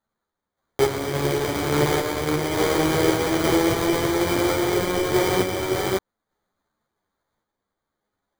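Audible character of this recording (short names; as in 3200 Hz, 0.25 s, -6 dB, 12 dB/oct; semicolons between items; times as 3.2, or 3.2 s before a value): random-step tremolo; aliases and images of a low sample rate 2700 Hz, jitter 0%; a shimmering, thickened sound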